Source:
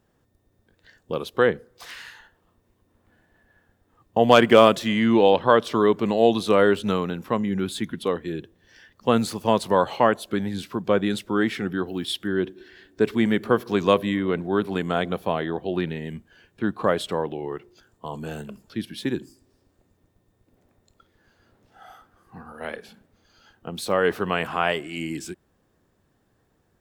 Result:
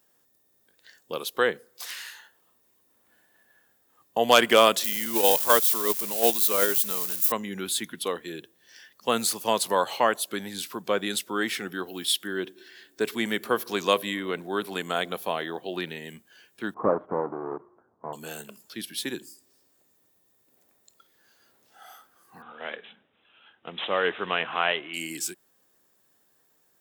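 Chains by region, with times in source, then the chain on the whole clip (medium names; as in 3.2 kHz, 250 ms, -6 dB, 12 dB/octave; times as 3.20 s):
4.84–7.32 s: zero-crossing glitches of -19 dBFS + gate -17 dBFS, range -8 dB
16.74–18.13 s: square wave that keeps the level + steep low-pass 1.2 kHz + dynamic bell 280 Hz, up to +3 dB, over -36 dBFS, Q 3.2
22.42–24.94 s: block-companded coder 5-bit + careless resampling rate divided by 6×, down none, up filtered
whole clip: high-pass 94 Hz; RIAA curve recording; trim -2.5 dB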